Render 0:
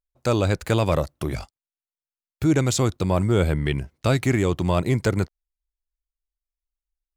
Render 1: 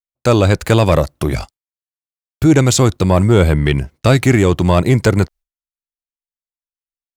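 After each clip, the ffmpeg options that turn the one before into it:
-af "agate=range=-33dB:threshold=-41dB:ratio=3:detection=peak,acontrast=69,volume=3dB"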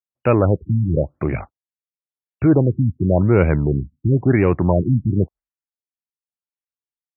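-af "aeval=exprs='if(lt(val(0),0),0.708*val(0),val(0))':c=same,highpass=71,afftfilt=real='re*lt(b*sr/1024,270*pow(2900/270,0.5+0.5*sin(2*PI*0.95*pts/sr)))':imag='im*lt(b*sr/1024,270*pow(2900/270,0.5+0.5*sin(2*PI*0.95*pts/sr)))':win_size=1024:overlap=0.75,volume=-2dB"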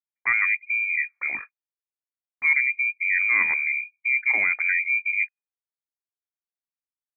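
-af "lowpass=f=2.1k:t=q:w=0.5098,lowpass=f=2.1k:t=q:w=0.6013,lowpass=f=2.1k:t=q:w=0.9,lowpass=f=2.1k:t=q:w=2.563,afreqshift=-2500,volume=-7dB"

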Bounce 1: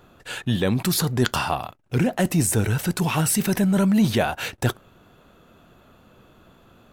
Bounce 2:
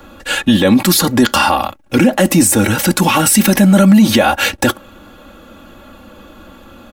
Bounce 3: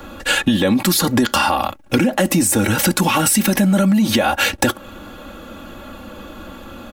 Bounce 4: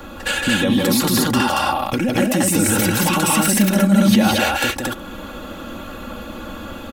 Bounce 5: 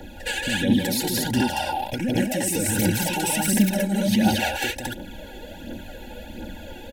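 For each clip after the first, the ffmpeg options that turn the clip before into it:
-filter_complex "[0:a]aecho=1:1:3.6:0.9,acrossover=split=110|830|5100[a][b][c][d];[a]acompressor=threshold=-43dB:ratio=6[e];[e][b][c][d]amix=inputs=4:normalize=0,alimiter=level_in=13dB:limit=-1dB:release=50:level=0:latency=1,volume=-1dB"
-af "acompressor=threshold=-17dB:ratio=5,volume=3.5dB"
-filter_complex "[0:a]alimiter=limit=-10.5dB:level=0:latency=1:release=351,asplit=2[a][b];[b]aecho=0:1:160.3|227.4:0.708|0.891[c];[a][c]amix=inputs=2:normalize=0"
-af "aphaser=in_gain=1:out_gain=1:delay=2.7:decay=0.52:speed=1.4:type=triangular,asuperstop=centerf=1200:order=12:qfactor=2.6,volume=-7dB"

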